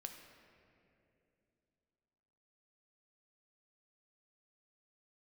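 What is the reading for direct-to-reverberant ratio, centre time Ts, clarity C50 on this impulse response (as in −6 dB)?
4.0 dB, 47 ms, 5.5 dB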